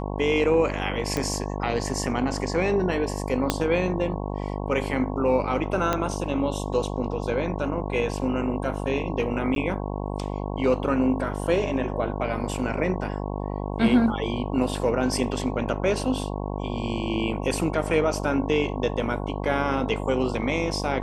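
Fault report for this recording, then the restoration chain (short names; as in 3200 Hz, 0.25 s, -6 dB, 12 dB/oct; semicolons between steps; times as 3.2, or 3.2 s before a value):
buzz 50 Hz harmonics 22 -30 dBFS
1.17 pop -12 dBFS
3.5 pop -6 dBFS
5.93 pop -9 dBFS
9.55–9.56 gap 12 ms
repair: de-click; de-hum 50 Hz, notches 22; interpolate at 9.55, 12 ms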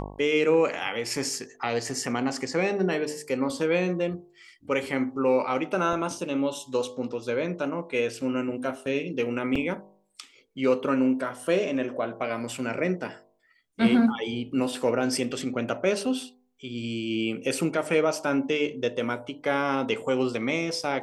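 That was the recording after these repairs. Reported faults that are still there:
1.17 pop
3.5 pop
5.93 pop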